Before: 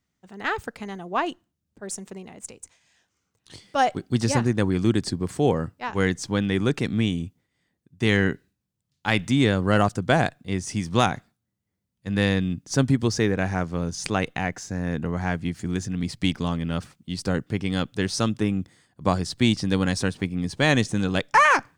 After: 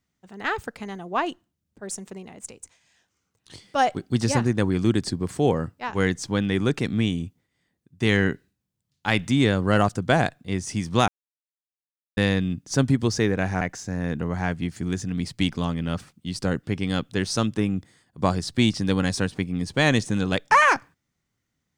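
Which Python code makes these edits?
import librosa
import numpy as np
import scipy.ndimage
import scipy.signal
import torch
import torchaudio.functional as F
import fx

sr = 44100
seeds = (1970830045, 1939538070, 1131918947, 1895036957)

y = fx.edit(x, sr, fx.silence(start_s=11.08, length_s=1.09),
    fx.cut(start_s=13.61, length_s=0.83), tone=tone)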